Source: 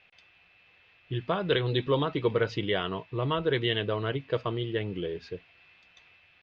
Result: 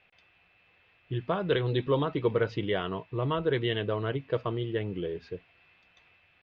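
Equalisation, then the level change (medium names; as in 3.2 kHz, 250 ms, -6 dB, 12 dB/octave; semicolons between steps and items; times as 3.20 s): treble shelf 2.8 kHz -9 dB; 0.0 dB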